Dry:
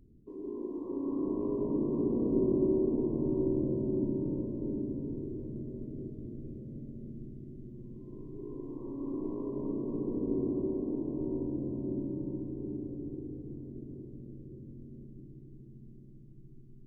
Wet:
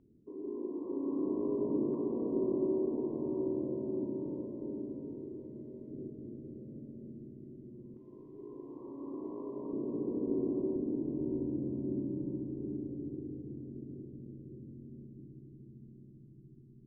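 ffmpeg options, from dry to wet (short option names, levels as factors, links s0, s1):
-af "asetnsamples=n=441:p=0,asendcmd='1.94 bandpass f 880;5.9 bandpass f 480;7.97 bandpass f 1000;9.73 bandpass f 490;10.76 bandpass f 230',bandpass=f=470:t=q:w=0.53:csg=0"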